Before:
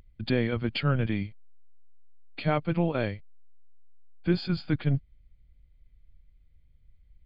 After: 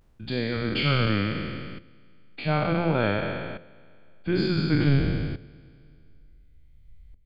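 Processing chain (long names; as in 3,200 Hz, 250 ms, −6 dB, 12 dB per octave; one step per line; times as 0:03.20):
peak hold with a decay on every bin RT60 1.92 s
shaped tremolo saw up 0.56 Hz, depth 80%
hum removal 86.16 Hz, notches 7
level +4.5 dB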